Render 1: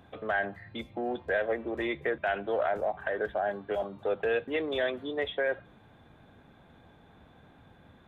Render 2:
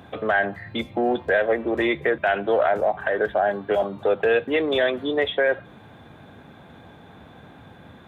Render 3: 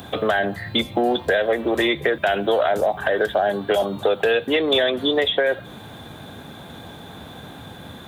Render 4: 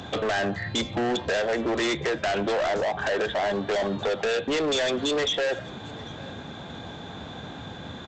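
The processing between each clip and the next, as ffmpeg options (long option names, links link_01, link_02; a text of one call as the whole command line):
ffmpeg -i in.wav -filter_complex "[0:a]asplit=2[link_01][link_02];[link_02]alimiter=level_in=0.5dB:limit=-24dB:level=0:latency=1:release=301,volume=-0.5dB,volume=2dB[link_03];[link_01][link_03]amix=inputs=2:normalize=0,highpass=78,volume=4dB" out.wav
ffmpeg -i in.wav -filter_complex "[0:a]acrossover=split=600|3000[link_01][link_02][link_03];[link_01]acompressor=threshold=-28dB:ratio=4[link_04];[link_02]acompressor=threshold=-30dB:ratio=4[link_05];[link_03]acompressor=threshold=-41dB:ratio=4[link_06];[link_04][link_05][link_06]amix=inputs=3:normalize=0,aexciter=amount=2.9:drive=5.7:freq=3300,volume=7dB" out.wav
ffmpeg -i in.wav -af "aresample=16000,asoftclip=type=hard:threshold=-23dB,aresample=44100,aecho=1:1:797:0.0841" out.wav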